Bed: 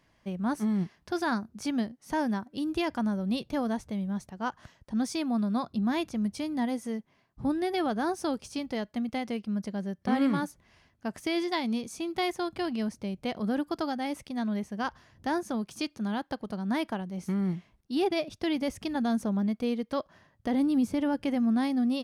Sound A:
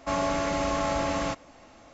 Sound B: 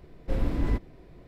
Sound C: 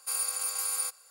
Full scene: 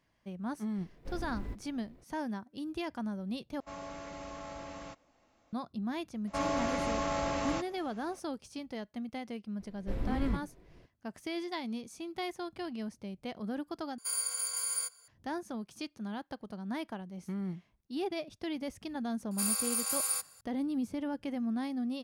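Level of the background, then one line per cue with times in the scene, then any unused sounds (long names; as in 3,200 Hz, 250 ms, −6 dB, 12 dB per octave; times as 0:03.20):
bed −8 dB
0:00.77: mix in B −15 dB + mu-law and A-law mismatch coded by mu
0:03.60: overwrite with A −17 dB
0:06.27: mix in A −5.5 dB
0:09.59: mix in B −8 dB
0:13.98: overwrite with C −7 dB + EQ curve with evenly spaced ripples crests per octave 1.8, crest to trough 13 dB
0:19.31: mix in C −1 dB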